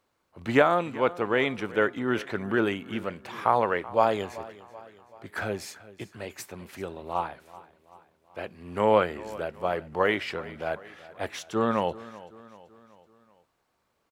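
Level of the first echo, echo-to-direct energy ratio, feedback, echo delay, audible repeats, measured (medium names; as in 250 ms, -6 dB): -18.5 dB, -17.0 dB, 51%, 382 ms, 3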